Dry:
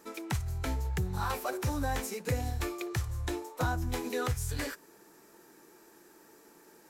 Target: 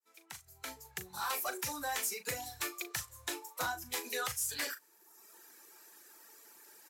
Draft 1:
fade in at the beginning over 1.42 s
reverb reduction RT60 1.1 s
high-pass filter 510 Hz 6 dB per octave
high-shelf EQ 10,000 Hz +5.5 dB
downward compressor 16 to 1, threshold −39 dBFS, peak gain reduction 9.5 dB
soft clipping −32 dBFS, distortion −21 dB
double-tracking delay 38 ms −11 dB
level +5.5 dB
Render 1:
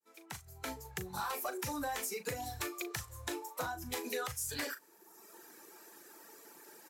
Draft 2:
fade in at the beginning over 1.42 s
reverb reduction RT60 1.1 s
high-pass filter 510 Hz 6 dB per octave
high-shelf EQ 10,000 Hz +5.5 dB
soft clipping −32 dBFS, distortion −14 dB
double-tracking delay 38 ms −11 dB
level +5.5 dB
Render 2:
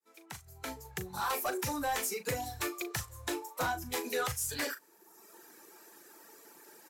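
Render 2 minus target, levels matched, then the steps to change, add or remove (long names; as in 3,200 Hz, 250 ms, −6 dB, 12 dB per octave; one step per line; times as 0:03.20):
500 Hz band +5.5 dB
change: high-pass filter 1,800 Hz 6 dB per octave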